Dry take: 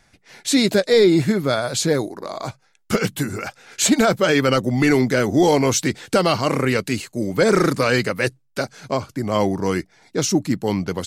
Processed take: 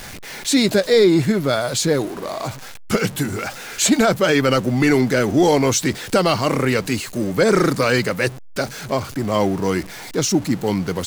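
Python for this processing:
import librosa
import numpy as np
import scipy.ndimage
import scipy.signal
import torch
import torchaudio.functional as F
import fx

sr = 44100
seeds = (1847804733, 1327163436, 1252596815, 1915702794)

y = x + 0.5 * 10.0 ** (-29.5 / 20.0) * np.sign(x)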